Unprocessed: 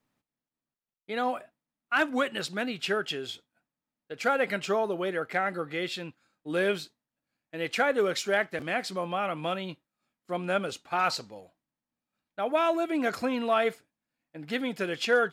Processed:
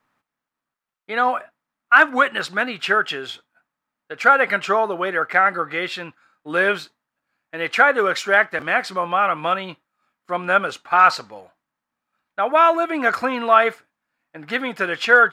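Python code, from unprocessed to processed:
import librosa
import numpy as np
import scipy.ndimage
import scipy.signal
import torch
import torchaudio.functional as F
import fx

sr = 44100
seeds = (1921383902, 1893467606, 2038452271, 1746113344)

y = fx.peak_eq(x, sr, hz=1300.0, db=14.5, octaves=1.9)
y = y * librosa.db_to_amplitude(1.0)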